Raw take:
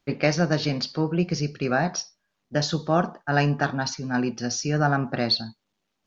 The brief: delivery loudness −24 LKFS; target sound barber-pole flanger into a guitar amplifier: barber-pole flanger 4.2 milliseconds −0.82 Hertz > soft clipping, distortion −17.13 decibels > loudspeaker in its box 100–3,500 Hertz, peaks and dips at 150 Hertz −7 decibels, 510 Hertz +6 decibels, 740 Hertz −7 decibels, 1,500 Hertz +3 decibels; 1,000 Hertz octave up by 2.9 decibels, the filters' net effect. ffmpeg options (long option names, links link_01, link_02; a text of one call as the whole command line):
ffmpeg -i in.wav -filter_complex "[0:a]equalizer=frequency=1000:width_type=o:gain=8,asplit=2[link_01][link_02];[link_02]adelay=4.2,afreqshift=-0.82[link_03];[link_01][link_03]amix=inputs=2:normalize=1,asoftclip=threshold=-14dB,highpass=100,equalizer=frequency=150:width_type=q:width=4:gain=-7,equalizer=frequency=510:width_type=q:width=4:gain=6,equalizer=frequency=740:width_type=q:width=4:gain=-7,equalizer=frequency=1500:width_type=q:width=4:gain=3,lowpass=frequency=3500:width=0.5412,lowpass=frequency=3500:width=1.3066,volume=4.5dB" out.wav